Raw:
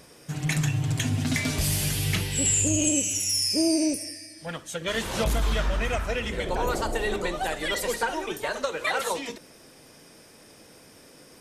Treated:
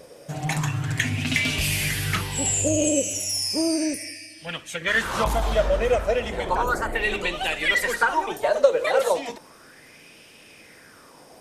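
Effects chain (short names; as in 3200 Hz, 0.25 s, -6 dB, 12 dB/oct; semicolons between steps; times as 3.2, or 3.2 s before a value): 6.62–7.02 bell 1500 Hz -> 8900 Hz -14.5 dB 0.77 oct; LFO bell 0.34 Hz 520–2800 Hz +15 dB; gain -1 dB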